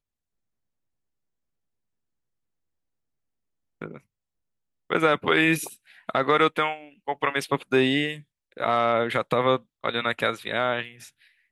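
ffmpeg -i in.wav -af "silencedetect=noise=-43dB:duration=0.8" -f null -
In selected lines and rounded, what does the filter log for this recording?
silence_start: 0.00
silence_end: 3.82 | silence_duration: 3.82
silence_start: 3.98
silence_end: 4.90 | silence_duration: 0.92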